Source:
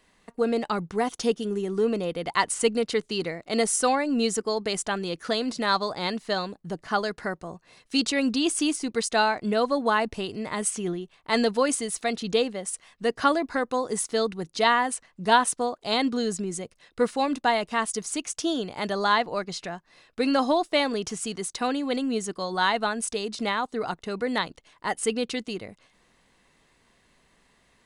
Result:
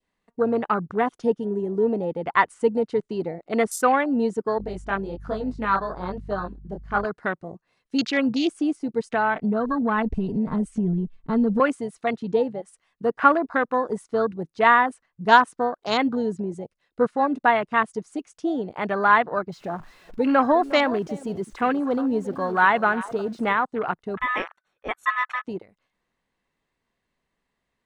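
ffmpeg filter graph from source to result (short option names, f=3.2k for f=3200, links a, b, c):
-filter_complex "[0:a]asettb=1/sr,asplit=3[a][b][c];[a]atrim=end=4.584[d];[b]atrim=start=4.58:end=7.05,asetpts=PTS-STARTPTS,afade=t=in:d=0.004:c=qsin,afade=t=out:st=2.466:d=0.004:c=qsin,aeval=exprs='val(0)+0.0112*(sin(2*PI*50*n/s)+sin(2*PI*2*50*n/s)/2+sin(2*PI*3*50*n/s)/3+sin(2*PI*4*50*n/s)/4+sin(2*PI*5*50*n/s)/5)':c=same,flanger=delay=19:depth=6.6:speed=1.2[e];[c]atrim=start=7.046[f];[d][e]acrossfade=d=0.004:c1=hsin:c2=qsin[g];[g][f]acrossfade=d=0.004:c1=qsin:c2=hsin,asettb=1/sr,asplit=3[h][i][j];[h]atrim=end=9.034[k];[i]atrim=start=9.03:end=11.6,asetpts=PTS-STARTPTS,afade=t=in:d=0.004:c=qsin,afade=t=out:st=2.566:d=0.004:c=qsin,asubboost=boost=12:cutoff=250,aecho=1:1:4.5:0.68,atrim=end_sample=113337,acompressor=threshold=-24dB:ratio=3:attack=3.2:release=140:knee=1:detection=peak[l];[j]atrim=start=11.596[m];[k][l]acrossfade=d=0.004:c1=hsin:c2=qsin[n];[n][m]acrossfade=d=0.004:c1=qsin:c2=hsin,asettb=1/sr,asplit=3[o][p][q];[o]atrim=end=19.524[r];[p]atrim=start=19.52:end=23.53,asetpts=PTS-STARTPTS,afade=t=in:d=0.004:c=qsin,afade=t=out:st=4.006:d=0.004:c=qsin,aeval=exprs='val(0)+0.5*0.0188*sgn(val(0))':c=same,aecho=1:1:357:0.178,atrim=end_sample=176841[s];[q]atrim=start=23.526[t];[r][s]acrossfade=d=0.004:c1=hsin:c2=qsin[u];[u][t]acrossfade=d=0.004:c1=qsin:c2=hsin,asettb=1/sr,asplit=3[v][w][x];[v]atrim=end=24.174[y];[w]atrim=start=24.17:end=25.45,asetpts=PTS-STARTPTS,afade=t=in:d=0.004:c=qsin,afade=t=out:st=1.276:d=0.004:c=qsin,aeval=exprs='val(0)*sin(2*PI*1500*n/s)':c=same,asuperstop=centerf=4900:order=20:qfactor=5.9[z];[x]atrim=start=25.446[aa];[y][z]acrossfade=d=0.004:c1=hsin:c2=qsin[ab];[ab][aa]acrossfade=d=0.004:c1=qsin:c2=hsin,adynamicequalizer=threshold=0.0112:dfrequency=1400:dqfactor=1.1:tfrequency=1400:tqfactor=1.1:attack=5:release=100:ratio=0.375:range=3:mode=boostabove:tftype=bell,afwtdn=0.0355,highshelf=f=4.5k:g=-8,volume=2dB"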